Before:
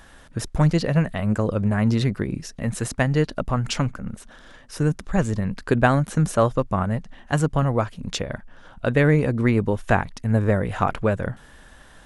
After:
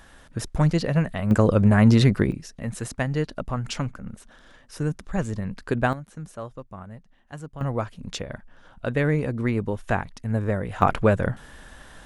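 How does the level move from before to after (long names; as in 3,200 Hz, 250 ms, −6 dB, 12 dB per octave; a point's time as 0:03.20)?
−2 dB
from 0:01.31 +4.5 dB
from 0:02.32 −5 dB
from 0:05.93 −17 dB
from 0:07.61 −5 dB
from 0:10.82 +2.5 dB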